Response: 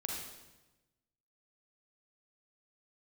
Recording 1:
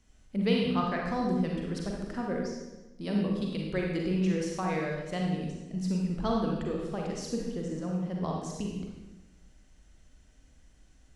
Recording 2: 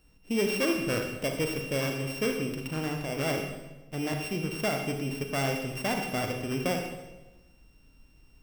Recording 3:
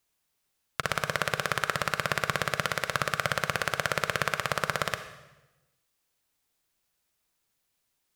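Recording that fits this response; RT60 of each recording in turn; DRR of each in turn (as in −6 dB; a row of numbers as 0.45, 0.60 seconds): 1; 1.1, 1.1, 1.1 seconds; −1.5, 3.0, 9.5 decibels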